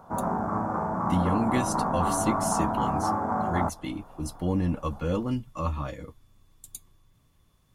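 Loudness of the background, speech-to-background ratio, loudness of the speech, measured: -28.0 LUFS, -2.5 dB, -30.5 LUFS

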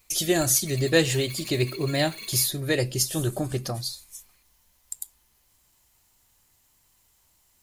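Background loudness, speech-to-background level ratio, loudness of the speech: -40.0 LUFS, 15.5 dB, -24.5 LUFS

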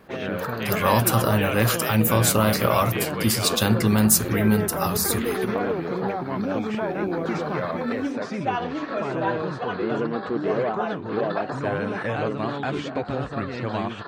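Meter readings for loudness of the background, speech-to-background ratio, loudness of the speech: -27.0 LUFS, 5.5 dB, -21.5 LUFS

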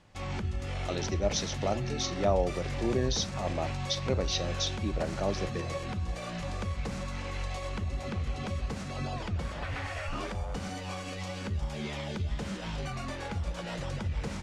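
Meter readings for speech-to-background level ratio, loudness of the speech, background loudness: 3.0 dB, -33.0 LUFS, -36.0 LUFS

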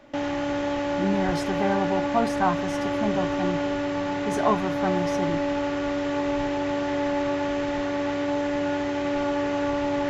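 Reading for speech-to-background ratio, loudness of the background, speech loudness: -2.0 dB, -26.5 LUFS, -28.5 LUFS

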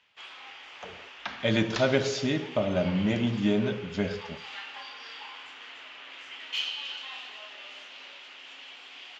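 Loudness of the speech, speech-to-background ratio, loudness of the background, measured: -27.5 LUFS, 12.5 dB, -40.0 LUFS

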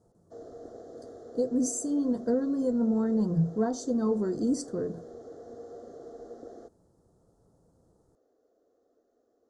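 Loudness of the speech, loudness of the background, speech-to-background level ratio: -28.5 LUFS, -46.5 LUFS, 18.0 dB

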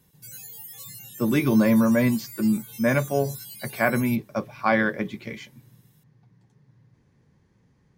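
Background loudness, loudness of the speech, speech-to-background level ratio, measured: -39.0 LUFS, -23.5 LUFS, 15.5 dB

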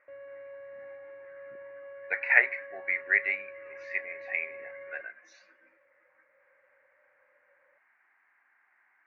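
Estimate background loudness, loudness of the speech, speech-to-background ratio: -46.0 LUFS, -28.5 LUFS, 17.5 dB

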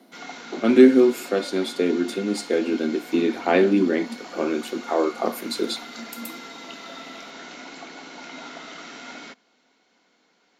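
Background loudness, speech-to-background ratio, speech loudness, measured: -38.5 LUFS, 17.0 dB, -21.5 LUFS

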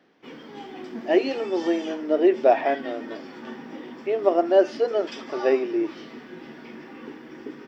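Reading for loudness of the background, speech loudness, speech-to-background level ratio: -39.0 LUFS, -23.0 LUFS, 16.0 dB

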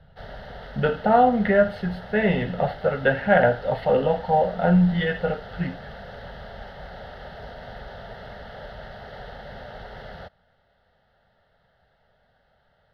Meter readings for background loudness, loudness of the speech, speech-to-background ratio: -40.5 LUFS, -22.0 LUFS, 18.5 dB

